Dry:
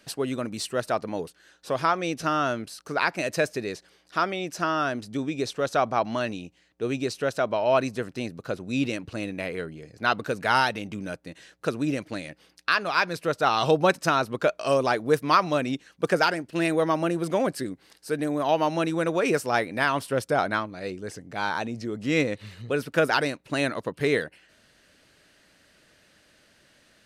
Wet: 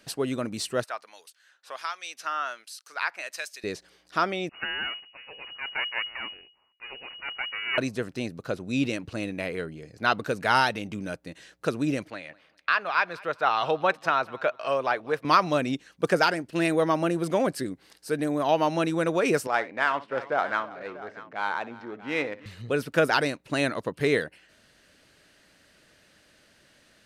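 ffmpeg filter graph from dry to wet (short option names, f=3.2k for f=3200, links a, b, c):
-filter_complex "[0:a]asettb=1/sr,asplit=3[a][b][c];[a]atrim=end=0.844[d];[b]atrim=start=0.84:end=3.64,asetpts=PTS-STARTPTS,afade=t=in:d=0.004:c=qsin,afade=t=out:st=2.796:d=0.004:c=qsin,highpass=1.2k,acrossover=split=2500[e][f];[e]aeval=exprs='val(0)*(1-0.7/2+0.7/2*cos(2*PI*1.3*n/s))':c=same[g];[f]aeval=exprs='val(0)*(1-0.7/2-0.7/2*cos(2*PI*1.3*n/s))':c=same[h];[g][h]amix=inputs=2:normalize=0[i];[c]atrim=start=3.636[j];[d][i]acrossfade=d=0.004:c1=hsin:c2=qsin[k];[k][j]acrossfade=d=0.004:c1=qsin:c2=hsin,asettb=1/sr,asplit=3[l][m][n];[l]atrim=end=4.494[o];[m]atrim=start=4.49:end=7.78,asetpts=PTS-STARTPTS,afade=t=in:d=0.004:c=qsin,afade=t=out:st=3.286:d=0.004:c=qsin,highpass=790,aeval=exprs='max(val(0),0)':c=same,lowpass=f=2.5k:t=q:w=0.5098,lowpass=f=2.5k:t=q:w=0.6013,lowpass=f=2.5k:t=q:w=0.9,lowpass=f=2.5k:t=q:w=2.563,afreqshift=-2900[p];[n]atrim=start=7.776[q];[o][p]acrossfade=d=0.004:c1=hsin:c2=qsin[r];[r][q]acrossfade=d=0.004:c1=qsin:c2=hsin,asettb=1/sr,asplit=3[s][t][u];[s]atrim=end=12.104[v];[t]atrim=start=12.1:end=15.25,asetpts=PTS-STARTPTS,afade=t=in:d=0.004:c=qsin,afade=t=out:st=3.146:d=0.004:c=qsin,acrossover=split=550 3500:gain=0.251 1 0.141[w][x][y];[w][x][y]amix=inputs=3:normalize=0,aecho=1:1:200|400:0.0708|0.0227,atrim=end_sample=138915[z];[u]atrim=start=15.246[aa];[v][z]acrossfade=d=0.004:c1=hsin:c2=qsin[ab];[ab][aa]acrossfade=d=0.004:c1=qsin:c2=hsin,asettb=1/sr,asplit=3[ac][ad][ae];[ac]atrim=end=19.474[af];[ad]atrim=start=19.47:end=22.46,asetpts=PTS-STARTPTS,afade=t=in:d=0.004:c=qsin,afade=t=out:st=2.986:d=0.004:c=qsin,adynamicsmooth=sensitivity=4:basefreq=2k,bandpass=f=1.3k:t=q:w=0.58,aecho=1:1:60|327|637:0.158|0.112|0.15,atrim=end_sample=131859[ag];[ae]atrim=start=22.456[ah];[af][ag]acrossfade=d=0.004:c1=hsin:c2=qsin[ai];[ai][ah]acrossfade=d=0.004:c1=qsin:c2=hsin"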